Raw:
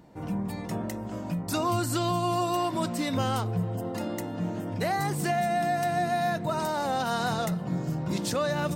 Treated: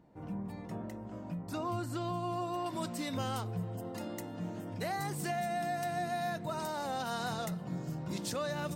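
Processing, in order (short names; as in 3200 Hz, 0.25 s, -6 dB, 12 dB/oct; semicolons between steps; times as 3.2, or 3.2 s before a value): high shelf 3000 Hz -9.5 dB, from 2.66 s +3 dB; gain -8.5 dB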